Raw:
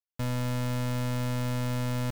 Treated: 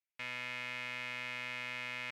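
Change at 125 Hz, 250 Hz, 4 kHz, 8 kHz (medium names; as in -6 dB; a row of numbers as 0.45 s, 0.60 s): -29.5 dB, -24.0 dB, -2.0 dB, -14.0 dB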